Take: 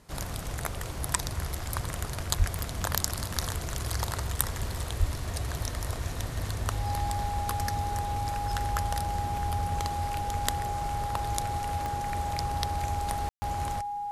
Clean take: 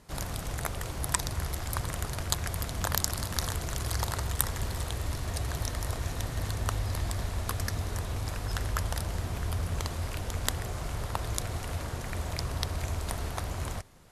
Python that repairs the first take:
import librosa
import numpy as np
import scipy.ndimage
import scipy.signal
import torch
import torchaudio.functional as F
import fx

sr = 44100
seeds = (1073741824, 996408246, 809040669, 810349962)

y = fx.fix_declick_ar(x, sr, threshold=10.0)
y = fx.notch(y, sr, hz=820.0, q=30.0)
y = fx.highpass(y, sr, hz=140.0, slope=24, at=(2.38, 2.5), fade=0.02)
y = fx.highpass(y, sr, hz=140.0, slope=24, at=(4.99, 5.11), fade=0.02)
y = fx.fix_ambience(y, sr, seeds[0], print_start_s=0.0, print_end_s=0.5, start_s=13.29, end_s=13.42)